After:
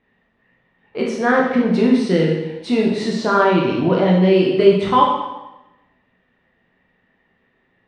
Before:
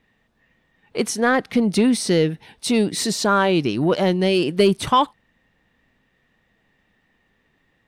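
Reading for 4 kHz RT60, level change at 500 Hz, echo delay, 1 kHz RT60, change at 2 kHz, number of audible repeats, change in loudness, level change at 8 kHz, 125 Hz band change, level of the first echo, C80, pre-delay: 0.90 s, +4.0 dB, none, 1.0 s, +1.5 dB, none, +3.0 dB, under -10 dB, +4.0 dB, none, 5.0 dB, 7 ms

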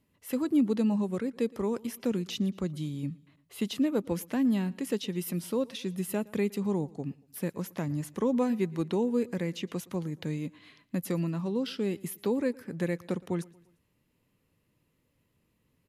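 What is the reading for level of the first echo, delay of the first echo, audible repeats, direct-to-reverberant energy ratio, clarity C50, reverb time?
-23.5 dB, 0.116 s, 2, none, none, none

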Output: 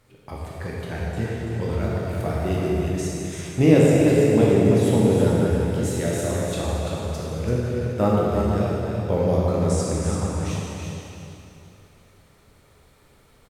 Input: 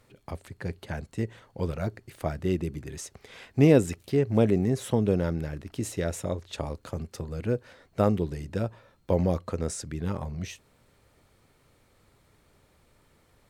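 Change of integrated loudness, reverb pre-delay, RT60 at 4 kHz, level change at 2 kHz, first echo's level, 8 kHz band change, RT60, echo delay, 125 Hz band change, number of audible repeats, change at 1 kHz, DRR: +7.0 dB, 10 ms, 2.7 s, +7.0 dB, -5.0 dB, +7.0 dB, 2.8 s, 0.337 s, +7.0 dB, 1, +7.5 dB, -6.5 dB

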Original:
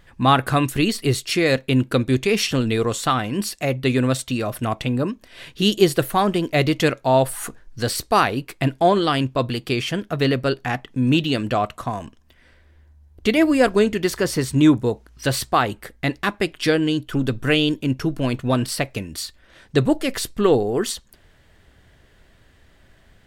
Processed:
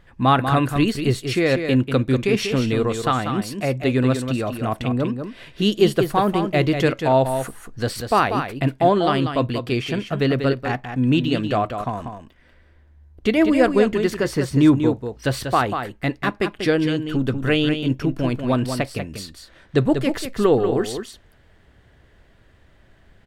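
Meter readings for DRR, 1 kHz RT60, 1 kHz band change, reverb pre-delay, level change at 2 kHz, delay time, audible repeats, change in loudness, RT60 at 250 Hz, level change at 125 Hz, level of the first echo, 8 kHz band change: none, none, 0.0 dB, none, -1.5 dB, 0.191 s, 1, 0.0 dB, none, +0.5 dB, -7.5 dB, -7.0 dB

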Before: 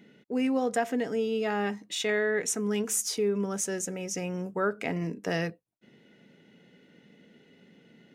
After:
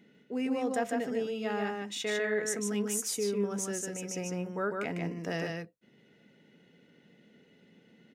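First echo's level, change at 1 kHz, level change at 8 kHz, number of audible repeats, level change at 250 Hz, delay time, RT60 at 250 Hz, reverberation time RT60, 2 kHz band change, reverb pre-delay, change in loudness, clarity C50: -3.5 dB, -3.5 dB, -3.5 dB, 1, -3.0 dB, 0.15 s, none, none, -3.5 dB, none, -3.5 dB, none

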